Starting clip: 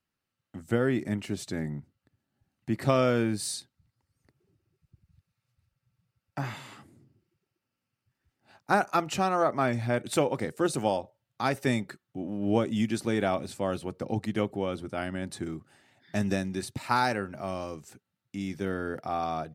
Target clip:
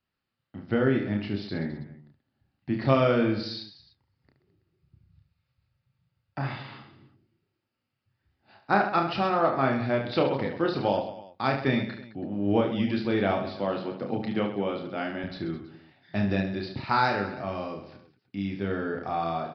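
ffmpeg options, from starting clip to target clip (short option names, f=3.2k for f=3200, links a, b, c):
-filter_complex "[0:a]asettb=1/sr,asplit=3[a][b][c];[a]atrim=end=13.504[d];[b]atrim=start=13.5:end=15.24,asetpts=PTS-STARTPTS,afade=t=in:d=0.004:c=qsin,afade=t=out:st=1.736:d=0.004:c=qsin,highpass=f=130:w=0.5412,highpass=f=130:w=1.3066[e];[c]atrim=start=15.236[f];[d][e]acrossfade=d=0.004:c1=hsin:c2=qsin[g];[g][f]acrossfade=d=0.004:c1=qsin:c2=hsin,asplit=2[h][i];[i]aecho=0:1:30|72|130.8|213.1|328.4:0.631|0.398|0.251|0.158|0.1[j];[h][j]amix=inputs=2:normalize=0,aresample=11025,aresample=44100"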